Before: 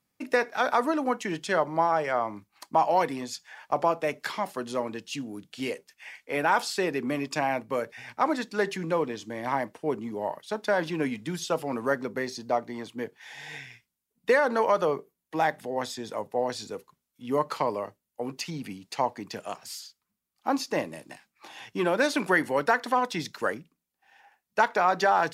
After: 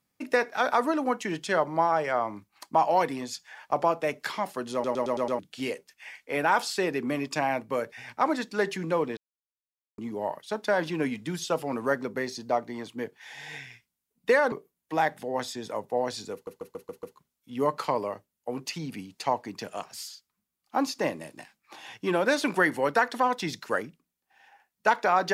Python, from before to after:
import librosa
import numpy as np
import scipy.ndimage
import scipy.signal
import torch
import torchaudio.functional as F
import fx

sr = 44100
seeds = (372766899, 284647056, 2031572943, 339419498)

y = fx.edit(x, sr, fx.stutter_over(start_s=4.73, slice_s=0.11, count=6),
    fx.silence(start_s=9.17, length_s=0.81),
    fx.cut(start_s=14.52, length_s=0.42),
    fx.stutter(start_s=16.75, slice_s=0.14, count=6), tone=tone)